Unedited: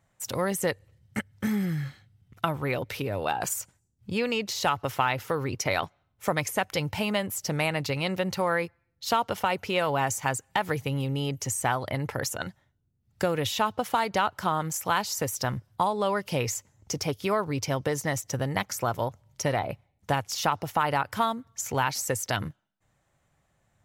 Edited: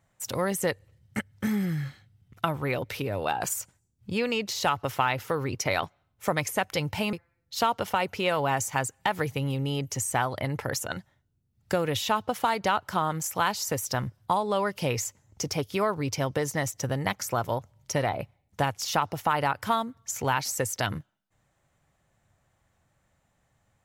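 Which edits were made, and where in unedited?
7.13–8.63 s: delete

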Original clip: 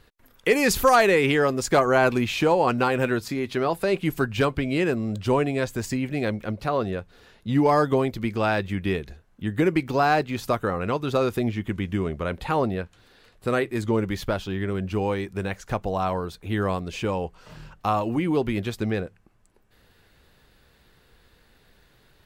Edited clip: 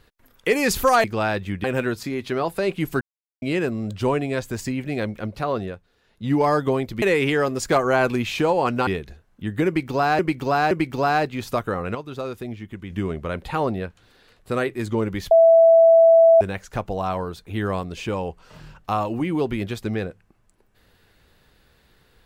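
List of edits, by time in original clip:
1.04–2.89 s: swap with 8.27–8.87 s
4.26–4.67 s: mute
6.85–7.57 s: dip -12.5 dB, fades 0.29 s
9.67–10.19 s: loop, 3 plays
10.91–11.86 s: gain -7.5 dB
14.27–15.37 s: bleep 660 Hz -9 dBFS

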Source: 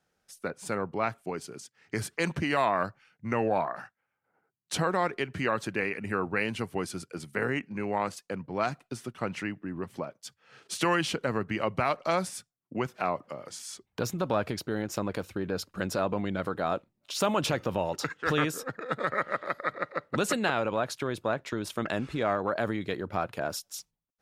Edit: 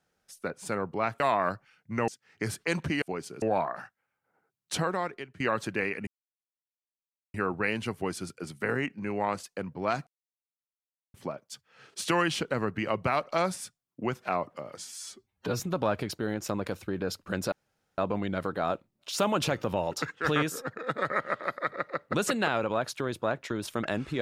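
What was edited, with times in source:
1.20–1.60 s: swap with 2.54–3.42 s
4.73–5.40 s: fade out, to -18.5 dB
6.07 s: insert silence 1.27 s
8.80–9.87 s: mute
13.58–14.08 s: stretch 1.5×
16.00 s: insert room tone 0.46 s

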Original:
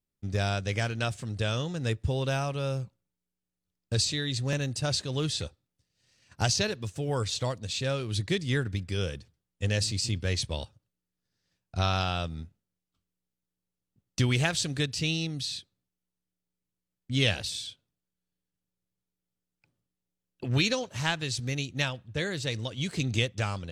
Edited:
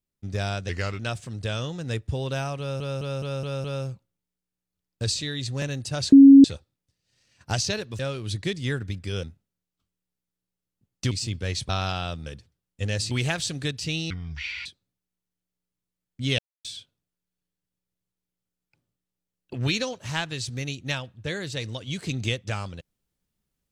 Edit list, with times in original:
0.69–0.95 s: speed 86%
2.55 s: stutter 0.21 s, 6 plays
5.03–5.35 s: bleep 275 Hz -6 dBFS
6.90–7.84 s: delete
9.08–9.93 s: swap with 12.38–14.26 s
10.51–11.81 s: delete
15.25–15.56 s: speed 56%
17.29–17.55 s: mute

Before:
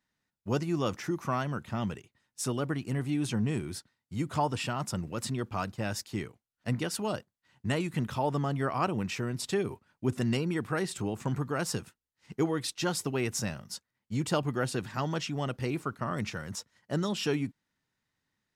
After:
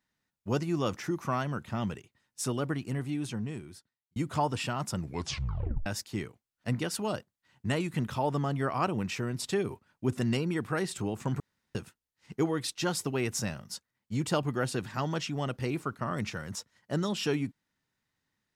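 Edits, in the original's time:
2.72–4.16 s: fade out
4.99 s: tape stop 0.87 s
11.40–11.75 s: room tone

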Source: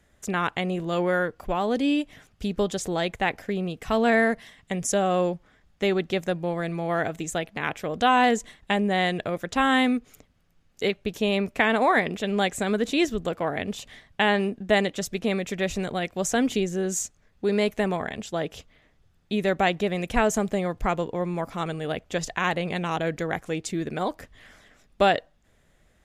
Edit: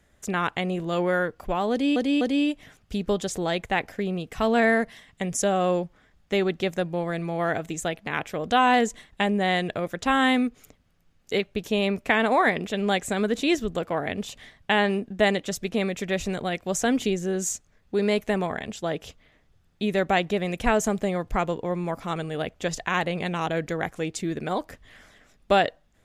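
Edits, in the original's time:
1.71–1.96 s: loop, 3 plays

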